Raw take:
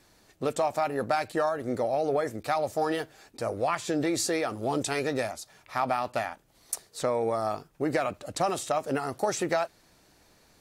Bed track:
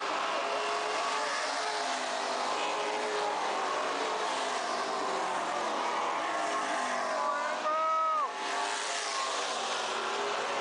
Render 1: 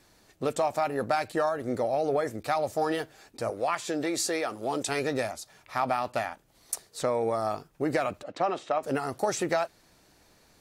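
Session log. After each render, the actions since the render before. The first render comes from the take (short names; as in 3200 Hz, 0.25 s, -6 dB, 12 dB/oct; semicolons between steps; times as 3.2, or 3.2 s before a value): 3.5–4.89 HPF 310 Hz 6 dB/oct; 8.23–8.83 BPF 230–2900 Hz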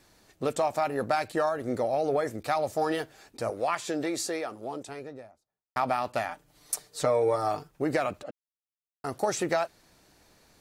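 3.73–5.76 studio fade out; 6.28–7.71 comb 6.7 ms, depth 69%; 8.31–9.04 mute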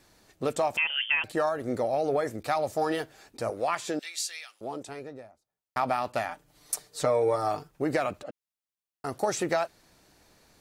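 0.77–1.24 inverted band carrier 3300 Hz; 3.99–4.61 resonant high-pass 2800 Hz, resonance Q 1.6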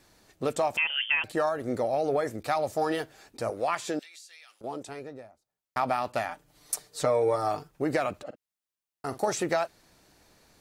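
4.02–4.64 compressor 12:1, threshold -46 dBFS; 8.22–9.33 doubler 47 ms -13 dB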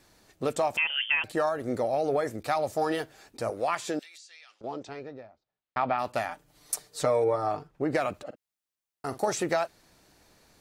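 4.17–5.98 LPF 7900 Hz -> 3500 Hz 24 dB/oct; 7.24–7.95 LPF 2200 Hz 6 dB/oct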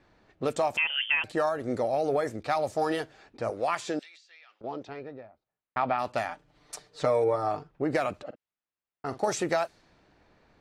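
low-pass opened by the level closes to 2400 Hz, open at -22.5 dBFS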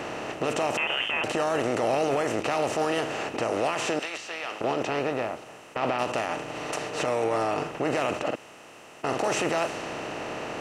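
per-bin compression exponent 0.4; limiter -16.5 dBFS, peak gain reduction 11 dB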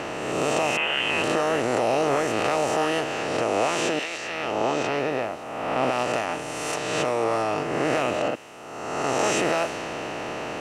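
spectral swells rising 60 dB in 1.53 s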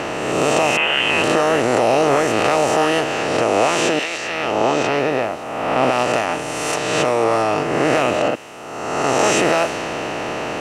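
gain +7 dB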